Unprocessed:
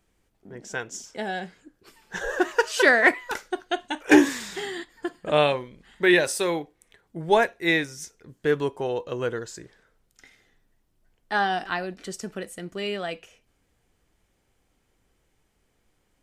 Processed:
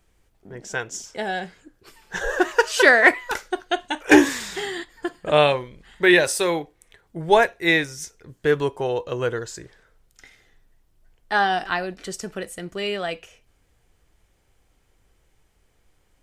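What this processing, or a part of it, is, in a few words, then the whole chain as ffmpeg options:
low shelf boost with a cut just above: -af "lowshelf=f=91:g=5.5,equalizer=f=230:t=o:w=0.95:g=-5,volume=1.58"

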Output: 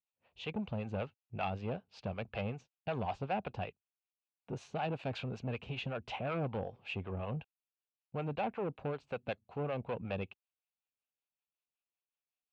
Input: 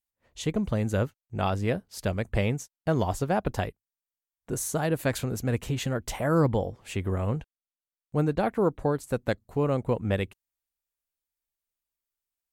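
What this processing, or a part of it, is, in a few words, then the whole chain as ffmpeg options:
guitar amplifier with harmonic tremolo: -filter_complex "[0:a]acrossover=split=490[s0][s1];[s0]aeval=exprs='val(0)*(1-0.7/2+0.7/2*cos(2*PI*5.3*n/s))':c=same[s2];[s1]aeval=exprs='val(0)*(1-0.7/2-0.7/2*cos(2*PI*5.3*n/s))':c=same[s3];[s2][s3]amix=inputs=2:normalize=0,asoftclip=type=tanh:threshold=0.0447,highpass=99,equalizer=f=310:t=q:w=4:g=-6,equalizer=f=780:t=q:w=4:g=5,equalizer=f=1900:t=q:w=4:g=-7,equalizer=f=2600:t=q:w=4:g=10,lowpass=f=3900:w=0.5412,lowpass=f=3900:w=1.3066,volume=0.668"

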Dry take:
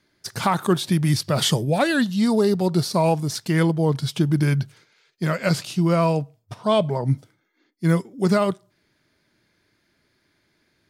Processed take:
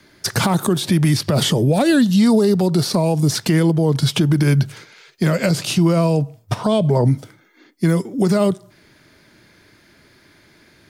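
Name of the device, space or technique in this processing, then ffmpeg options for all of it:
mastering chain: -filter_complex "[0:a]equalizer=f=4300:t=o:w=0.77:g=-1.5,acrossover=split=210|590|3500[s0][s1][s2][s3];[s0]acompressor=threshold=0.0501:ratio=4[s4];[s1]acompressor=threshold=0.0891:ratio=4[s5];[s2]acompressor=threshold=0.0158:ratio=4[s6];[s3]acompressor=threshold=0.0141:ratio=4[s7];[s4][s5][s6][s7]amix=inputs=4:normalize=0,acompressor=threshold=0.0398:ratio=2.5,alimiter=level_in=12.6:limit=0.891:release=50:level=0:latency=1,volume=0.473"

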